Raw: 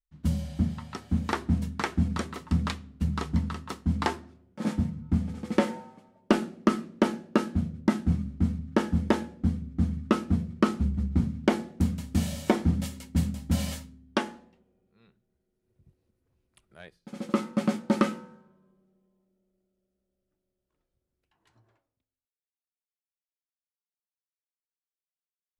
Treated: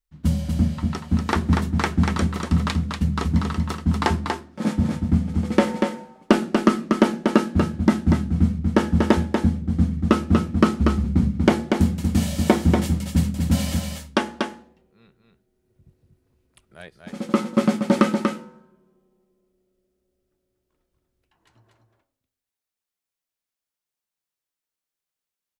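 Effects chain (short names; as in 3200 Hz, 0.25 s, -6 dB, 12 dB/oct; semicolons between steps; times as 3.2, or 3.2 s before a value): echo 0.239 s -4.5 dB; gain +6 dB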